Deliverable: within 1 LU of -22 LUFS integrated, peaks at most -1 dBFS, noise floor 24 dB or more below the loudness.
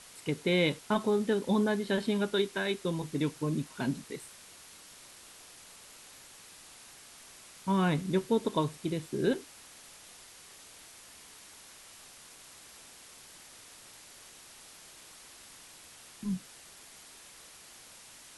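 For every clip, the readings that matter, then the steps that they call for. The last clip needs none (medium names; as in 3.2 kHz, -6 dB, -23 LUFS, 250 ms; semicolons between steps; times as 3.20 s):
noise floor -53 dBFS; noise floor target -56 dBFS; loudness -31.5 LUFS; peak level -15.5 dBFS; loudness target -22.0 LUFS
-> noise print and reduce 6 dB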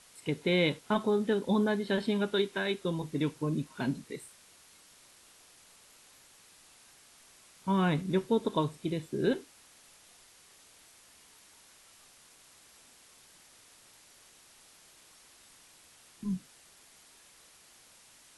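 noise floor -59 dBFS; loudness -31.5 LUFS; peak level -15.5 dBFS; loudness target -22.0 LUFS
-> trim +9.5 dB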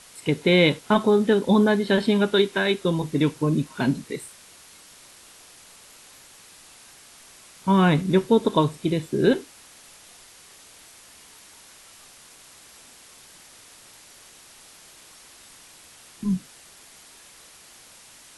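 loudness -22.0 LUFS; peak level -6.0 dBFS; noise floor -50 dBFS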